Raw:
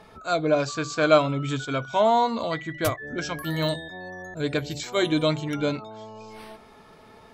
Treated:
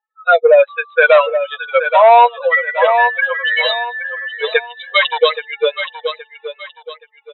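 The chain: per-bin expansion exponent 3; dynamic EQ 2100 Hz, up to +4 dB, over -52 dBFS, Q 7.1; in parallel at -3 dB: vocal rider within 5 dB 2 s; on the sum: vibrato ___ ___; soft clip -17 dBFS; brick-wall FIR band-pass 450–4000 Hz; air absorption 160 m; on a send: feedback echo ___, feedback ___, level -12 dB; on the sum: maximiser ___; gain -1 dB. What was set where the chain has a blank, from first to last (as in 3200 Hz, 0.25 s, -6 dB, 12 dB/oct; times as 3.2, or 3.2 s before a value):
2.6 Hz, 8.4 cents, 0.823 s, 32%, +22 dB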